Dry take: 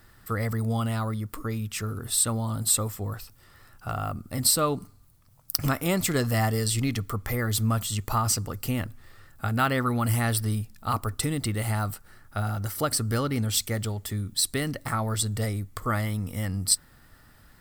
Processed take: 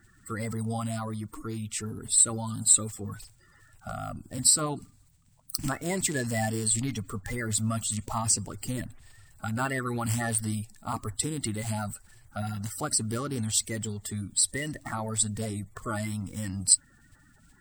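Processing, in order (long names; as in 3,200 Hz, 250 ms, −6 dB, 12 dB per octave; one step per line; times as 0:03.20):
spectral magnitudes quantised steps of 30 dB
thirty-one-band graphic EQ 500 Hz −6 dB, 1,250 Hz −5 dB, 8,000 Hz +11 dB, 12,500 Hz −12 dB
level −3.5 dB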